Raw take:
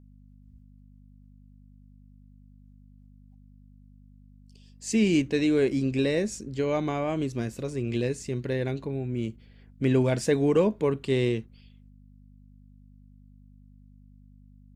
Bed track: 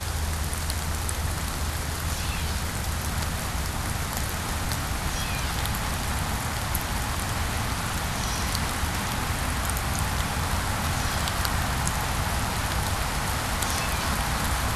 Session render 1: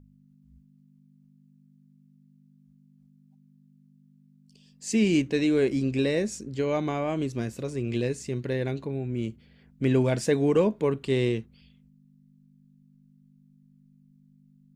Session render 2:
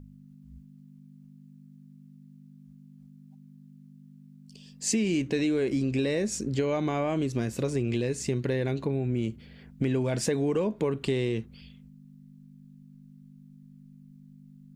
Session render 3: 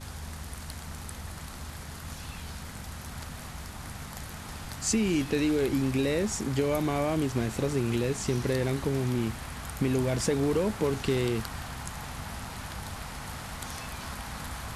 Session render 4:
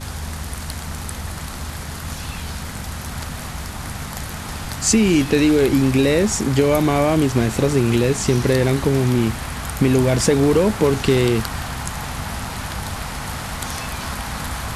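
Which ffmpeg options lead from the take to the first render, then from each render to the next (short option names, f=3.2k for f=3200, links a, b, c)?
-af "bandreject=f=50:t=h:w=4,bandreject=f=100:t=h:w=4"
-filter_complex "[0:a]asplit=2[a][b];[b]alimiter=limit=-21dB:level=0:latency=1:release=24,volume=2.5dB[c];[a][c]amix=inputs=2:normalize=0,acompressor=threshold=-24dB:ratio=6"
-filter_complex "[1:a]volume=-12dB[a];[0:a][a]amix=inputs=2:normalize=0"
-af "volume=11dB"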